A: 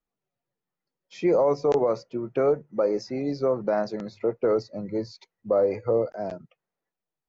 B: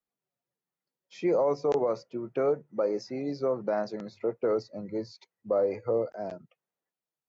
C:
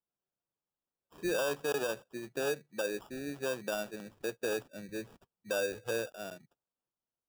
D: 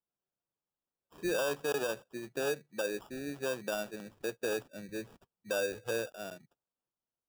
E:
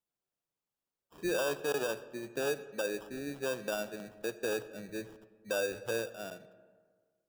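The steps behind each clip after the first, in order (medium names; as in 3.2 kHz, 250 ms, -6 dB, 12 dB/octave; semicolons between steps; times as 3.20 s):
high-pass 46 Hz; bass shelf 87 Hz -7 dB; trim -4 dB
sample-rate reducer 2.1 kHz, jitter 0%; trim -7 dB
no audible change
reverberation RT60 1.7 s, pre-delay 25 ms, DRR 14.5 dB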